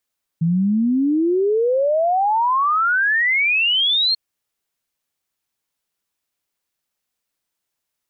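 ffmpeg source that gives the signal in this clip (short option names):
-f lavfi -i "aevalsrc='0.188*clip(min(t,3.74-t)/0.01,0,1)*sin(2*PI*160*3.74/log(4300/160)*(exp(log(4300/160)*t/3.74)-1))':d=3.74:s=44100"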